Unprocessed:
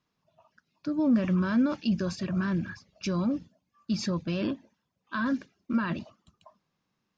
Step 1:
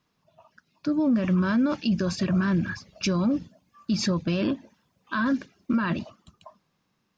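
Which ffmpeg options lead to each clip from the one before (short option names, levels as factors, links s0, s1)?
-af "dynaudnorm=f=330:g=9:m=1.78,alimiter=limit=0.075:level=0:latency=1:release=305,volume=2"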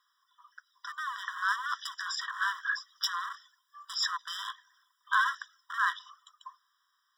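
-af "aeval=exprs='0.106*(abs(mod(val(0)/0.106+3,4)-2)-1)':c=same,afftfilt=real='re*eq(mod(floor(b*sr/1024/990),2),1)':imag='im*eq(mod(floor(b*sr/1024/990),2),1)':win_size=1024:overlap=0.75,volume=1.68"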